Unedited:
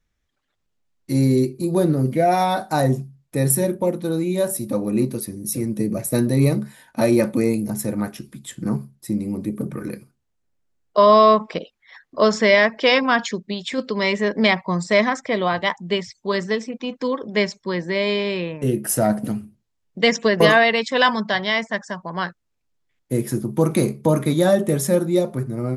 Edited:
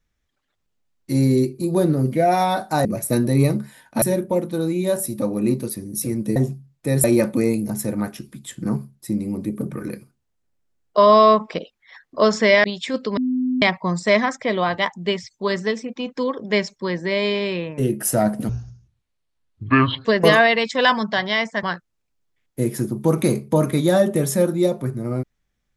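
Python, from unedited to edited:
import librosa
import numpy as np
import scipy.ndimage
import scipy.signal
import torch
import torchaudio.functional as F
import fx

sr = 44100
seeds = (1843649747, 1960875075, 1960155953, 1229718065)

y = fx.edit(x, sr, fx.swap(start_s=2.85, length_s=0.68, other_s=5.87, other_length_s=1.17),
    fx.cut(start_s=12.64, length_s=0.84),
    fx.bleep(start_s=14.01, length_s=0.45, hz=254.0, db=-18.0),
    fx.speed_span(start_s=19.33, length_s=0.89, speed=0.57),
    fx.cut(start_s=21.8, length_s=0.36), tone=tone)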